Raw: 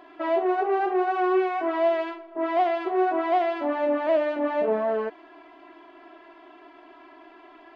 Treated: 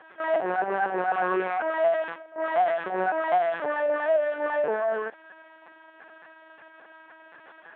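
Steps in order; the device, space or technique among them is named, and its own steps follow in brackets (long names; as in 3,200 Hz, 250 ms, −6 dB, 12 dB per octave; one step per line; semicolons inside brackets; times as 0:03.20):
talking toy (linear-prediction vocoder at 8 kHz pitch kept; high-pass filter 420 Hz 12 dB per octave; parametric band 1,600 Hz +10.5 dB 0.37 octaves)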